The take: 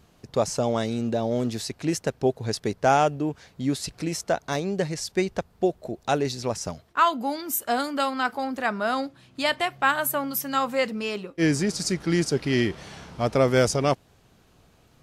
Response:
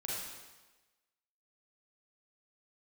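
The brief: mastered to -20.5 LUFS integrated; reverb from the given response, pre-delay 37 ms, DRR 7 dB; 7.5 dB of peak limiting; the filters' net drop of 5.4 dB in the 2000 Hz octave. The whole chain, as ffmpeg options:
-filter_complex "[0:a]equalizer=f=2k:t=o:g=-7.5,alimiter=limit=-16.5dB:level=0:latency=1,asplit=2[a][b];[1:a]atrim=start_sample=2205,adelay=37[c];[b][c]afir=irnorm=-1:irlink=0,volume=-9dB[d];[a][d]amix=inputs=2:normalize=0,volume=7dB"

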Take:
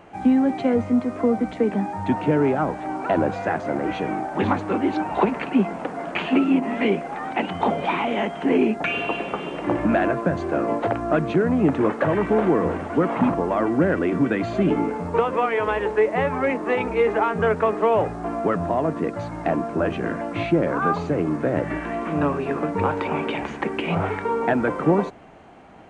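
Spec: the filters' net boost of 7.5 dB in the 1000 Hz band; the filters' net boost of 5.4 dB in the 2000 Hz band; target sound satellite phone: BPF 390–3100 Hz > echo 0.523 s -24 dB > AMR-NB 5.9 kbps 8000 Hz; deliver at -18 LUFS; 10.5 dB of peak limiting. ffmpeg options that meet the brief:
-af "equalizer=f=1k:t=o:g=9,equalizer=f=2k:t=o:g=4.5,alimiter=limit=-12.5dB:level=0:latency=1,highpass=390,lowpass=3.1k,aecho=1:1:523:0.0631,volume=8dB" -ar 8000 -c:a libopencore_amrnb -b:a 5900

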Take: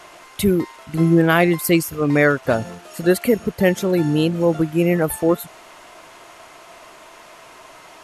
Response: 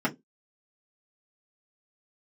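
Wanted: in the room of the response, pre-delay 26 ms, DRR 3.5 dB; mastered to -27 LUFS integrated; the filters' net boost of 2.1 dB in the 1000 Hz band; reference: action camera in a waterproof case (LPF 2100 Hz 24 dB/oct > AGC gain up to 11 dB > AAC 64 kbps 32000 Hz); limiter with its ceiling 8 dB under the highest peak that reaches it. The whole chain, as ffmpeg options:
-filter_complex "[0:a]equalizer=f=1k:t=o:g=3,alimiter=limit=-10.5dB:level=0:latency=1,asplit=2[a][b];[1:a]atrim=start_sample=2205,adelay=26[c];[b][c]afir=irnorm=-1:irlink=0,volume=-14.5dB[d];[a][d]amix=inputs=2:normalize=0,lowpass=f=2.1k:w=0.5412,lowpass=f=2.1k:w=1.3066,dynaudnorm=m=11dB,volume=-8.5dB" -ar 32000 -c:a aac -b:a 64k

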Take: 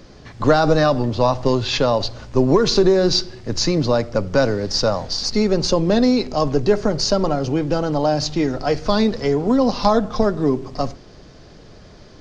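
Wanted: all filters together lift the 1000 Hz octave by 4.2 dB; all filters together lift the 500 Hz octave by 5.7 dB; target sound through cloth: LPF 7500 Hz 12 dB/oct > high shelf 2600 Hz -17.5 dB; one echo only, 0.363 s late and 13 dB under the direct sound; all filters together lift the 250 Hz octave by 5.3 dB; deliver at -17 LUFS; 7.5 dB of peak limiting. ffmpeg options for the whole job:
-af "equalizer=f=250:t=o:g=5,equalizer=f=500:t=o:g=5,equalizer=f=1k:t=o:g=6,alimiter=limit=-4dB:level=0:latency=1,lowpass=7.5k,highshelf=f=2.6k:g=-17.5,aecho=1:1:363:0.224,volume=-1dB"

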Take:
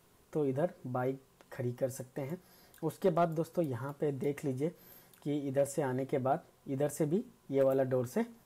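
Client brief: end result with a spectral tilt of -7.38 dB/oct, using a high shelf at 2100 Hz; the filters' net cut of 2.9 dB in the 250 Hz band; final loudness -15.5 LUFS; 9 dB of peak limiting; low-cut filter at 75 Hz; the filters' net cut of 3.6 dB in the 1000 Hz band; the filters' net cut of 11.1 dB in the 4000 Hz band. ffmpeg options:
-af "highpass=75,equalizer=f=250:t=o:g=-3.5,equalizer=f=1k:t=o:g=-3.5,highshelf=f=2.1k:g=-8,equalizer=f=4k:t=o:g=-7,volume=26dB,alimiter=limit=-4.5dB:level=0:latency=1"

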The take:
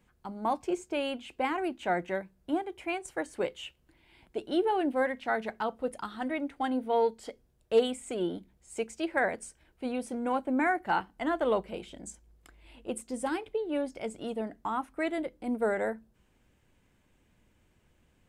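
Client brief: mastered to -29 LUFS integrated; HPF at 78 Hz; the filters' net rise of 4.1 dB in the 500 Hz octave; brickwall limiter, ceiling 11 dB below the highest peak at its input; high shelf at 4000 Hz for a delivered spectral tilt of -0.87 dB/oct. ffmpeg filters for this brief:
-af "highpass=78,equalizer=f=500:t=o:g=5,highshelf=f=4k:g=-6,volume=3dB,alimiter=limit=-18dB:level=0:latency=1"

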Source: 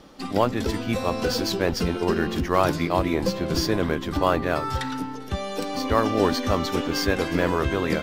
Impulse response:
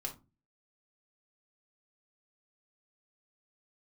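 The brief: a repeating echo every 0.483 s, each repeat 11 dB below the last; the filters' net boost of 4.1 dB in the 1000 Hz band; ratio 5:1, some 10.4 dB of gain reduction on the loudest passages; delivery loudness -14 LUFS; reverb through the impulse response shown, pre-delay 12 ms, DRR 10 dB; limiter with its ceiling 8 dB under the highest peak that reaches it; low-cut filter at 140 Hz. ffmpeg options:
-filter_complex "[0:a]highpass=140,equalizer=f=1k:t=o:g=5,acompressor=threshold=-24dB:ratio=5,alimiter=limit=-20dB:level=0:latency=1,aecho=1:1:483|966|1449:0.282|0.0789|0.0221,asplit=2[a][b];[1:a]atrim=start_sample=2205,adelay=12[c];[b][c]afir=irnorm=-1:irlink=0,volume=-9.5dB[d];[a][d]amix=inputs=2:normalize=0,volume=16dB"

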